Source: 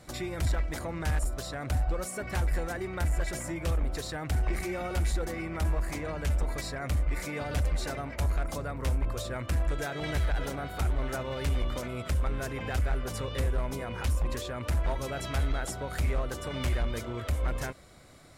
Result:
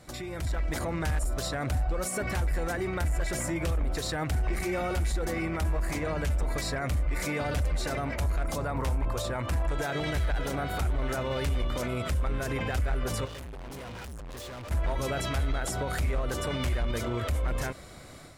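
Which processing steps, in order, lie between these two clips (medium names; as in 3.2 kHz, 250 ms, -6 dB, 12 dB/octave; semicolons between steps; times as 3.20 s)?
8.58–9.87 s: peaking EQ 890 Hz +7.5 dB 0.58 oct; peak limiter -30 dBFS, peak gain reduction 9 dB; level rider gain up to 7.5 dB; 13.25–14.71 s: hard clipper -39.5 dBFS, distortion -13 dB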